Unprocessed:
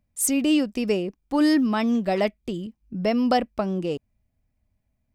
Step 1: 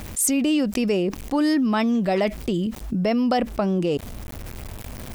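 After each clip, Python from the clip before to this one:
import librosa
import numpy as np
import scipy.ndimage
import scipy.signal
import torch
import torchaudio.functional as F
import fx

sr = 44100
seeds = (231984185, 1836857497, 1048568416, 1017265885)

y = fx.quant_dither(x, sr, seeds[0], bits=12, dither='none')
y = fx.env_flatten(y, sr, amount_pct=70)
y = F.gain(torch.from_numpy(y), -2.0).numpy()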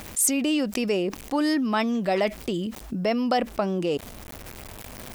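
y = fx.low_shelf(x, sr, hz=220.0, db=-10.0)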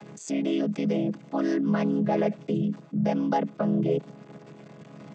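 y = fx.chord_vocoder(x, sr, chord='minor triad', root=49)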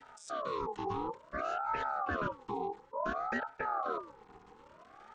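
y = fx.hum_notches(x, sr, base_hz=60, count=7)
y = fx.ring_lfo(y, sr, carrier_hz=850.0, swing_pct=30, hz=0.57)
y = F.gain(torch.from_numpy(y), -7.5).numpy()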